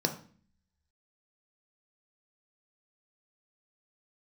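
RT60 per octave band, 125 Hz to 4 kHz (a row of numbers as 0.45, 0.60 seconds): 0.75, 0.80, 0.45, 0.40, 0.45, 0.40 seconds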